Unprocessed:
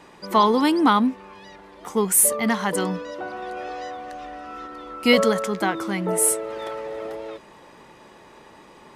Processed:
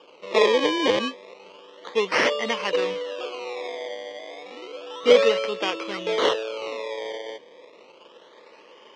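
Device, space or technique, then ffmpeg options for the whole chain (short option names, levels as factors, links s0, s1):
circuit-bent sampling toy: -filter_complex "[0:a]acrusher=samples=22:mix=1:aa=0.000001:lfo=1:lforange=22:lforate=0.31,highpass=470,equalizer=f=490:t=q:w=4:g=9,equalizer=f=770:t=q:w=4:g=-8,equalizer=f=1500:t=q:w=4:g=-7,equalizer=f=3000:t=q:w=4:g=6,equalizer=f=4700:t=q:w=4:g=-3,lowpass=f=5200:w=0.5412,lowpass=f=5200:w=1.3066,asettb=1/sr,asplit=3[s0][s1][s2];[s0]atrim=end=2.944[s3];[s1]atrim=start=2.94:end=4.8,asetpts=PTS-STARTPTS,afade=t=in:d=0.004:c=qsin,afade=t=out:st=1.856:d=0.004:c=qsin,highpass=190[s4];[s2]atrim=start=4.796[s5];[s3][s4]acrossfade=d=0.004:c1=hsin:c2=qsin[s6];[s6][s5]acrossfade=d=0.004:c1=qsin:c2=hsin"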